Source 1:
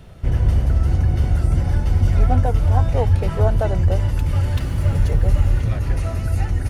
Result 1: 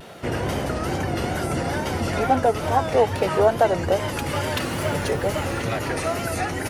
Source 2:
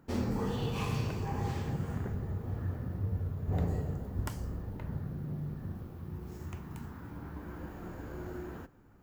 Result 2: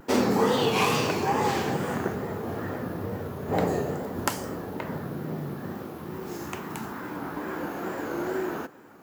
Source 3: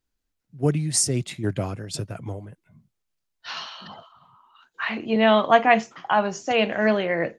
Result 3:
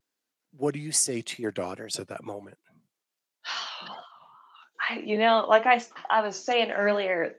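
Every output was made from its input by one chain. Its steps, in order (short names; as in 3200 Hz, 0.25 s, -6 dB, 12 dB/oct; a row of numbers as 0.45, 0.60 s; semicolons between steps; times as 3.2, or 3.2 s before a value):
HPF 310 Hz 12 dB/oct; in parallel at -0.5 dB: compressor, threshold -31 dBFS; on the sum: vibrato 2.3 Hz 91 cents; normalise peaks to -6 dBFS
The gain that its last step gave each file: +4.0, +10.0, -4.0 dB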